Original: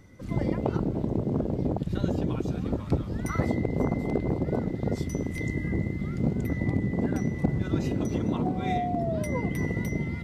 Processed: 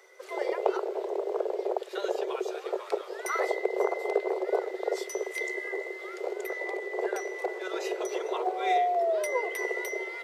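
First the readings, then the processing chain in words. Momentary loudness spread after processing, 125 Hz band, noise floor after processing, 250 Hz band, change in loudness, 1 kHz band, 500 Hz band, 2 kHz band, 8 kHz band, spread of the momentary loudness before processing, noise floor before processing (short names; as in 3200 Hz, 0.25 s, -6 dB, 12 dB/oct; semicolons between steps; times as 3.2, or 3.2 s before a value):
7 LU, under -40 dB, -43 dBFS, -13.5 dB, -2.5 dB, +4.5 dB, +4.0 dB, +5.0 dB, +4.0 dB, 3 LU, -35 dBFS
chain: Chebyshev high-pass 370 Hz, order 8; gain +5 dB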